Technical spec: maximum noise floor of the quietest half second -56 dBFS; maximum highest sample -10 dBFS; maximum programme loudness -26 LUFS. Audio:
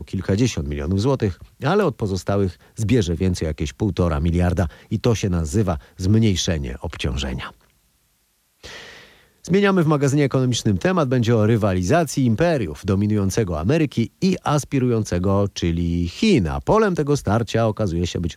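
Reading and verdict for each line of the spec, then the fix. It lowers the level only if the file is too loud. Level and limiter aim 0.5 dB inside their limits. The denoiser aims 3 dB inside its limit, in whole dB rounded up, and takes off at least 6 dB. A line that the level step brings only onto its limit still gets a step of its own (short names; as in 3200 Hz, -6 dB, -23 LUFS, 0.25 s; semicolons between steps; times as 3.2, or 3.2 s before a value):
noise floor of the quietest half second -64 dBFS: OK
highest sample -7.0 dBFS: fail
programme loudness -20.5 LUFS: fail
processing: gain -6 dB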